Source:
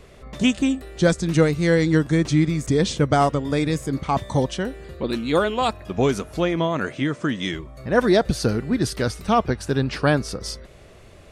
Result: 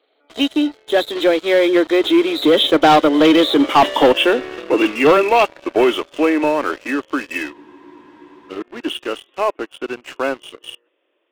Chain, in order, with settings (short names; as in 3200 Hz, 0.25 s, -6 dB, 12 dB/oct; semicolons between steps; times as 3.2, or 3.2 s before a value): nonlinear frequency compression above 2700 Hz 4:1; Doppler pass-by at 3.86, 34 m/s, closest 30 m; elliptic high-pass 290 Hz, stop band 50 dB; sample leveller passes 3; spectral freeze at 7.55, 0.96 s; gain +5.5 dB